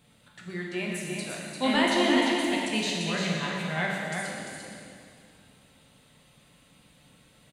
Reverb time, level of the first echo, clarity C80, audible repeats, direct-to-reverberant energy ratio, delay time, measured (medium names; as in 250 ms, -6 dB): 2.3 s, -5.0 dB, -1.0 dB, 1, -4.0 dB, 346 ms